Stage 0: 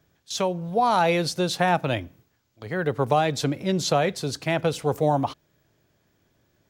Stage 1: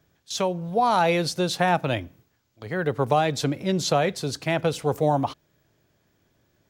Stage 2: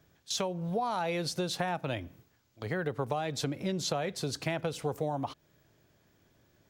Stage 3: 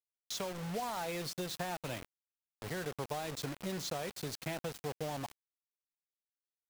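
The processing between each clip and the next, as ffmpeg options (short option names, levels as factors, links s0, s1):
-af anull
-af "acompressor=threshold=0.0316:ratio=5"
-af "acrusher=bits=5:mix=0:aa=0.000001,volume=0.447"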